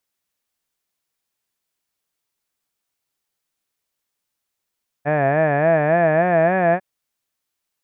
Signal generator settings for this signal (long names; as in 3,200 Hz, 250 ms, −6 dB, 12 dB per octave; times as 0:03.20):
vowel by formant synthesis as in had, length 1.75 s, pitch 141 Hz, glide +4.5 semitones, vibrato 3.5 Hz, vibrato depth 1.25 semitones